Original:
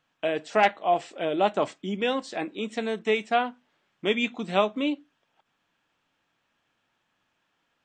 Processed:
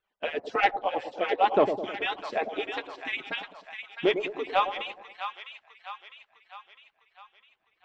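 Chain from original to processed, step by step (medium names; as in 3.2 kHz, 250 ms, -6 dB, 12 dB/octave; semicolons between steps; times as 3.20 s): harmonic-percussive separation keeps percussive; dynamic bell 420 Hz, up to +5 dB, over -42 dBFS, Q 1.7; waveshaping leveller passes 1; distance through air 190 m; on a send: two-band feedback delay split 850 Hz, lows 104 ms, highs 655 ms, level -8 dB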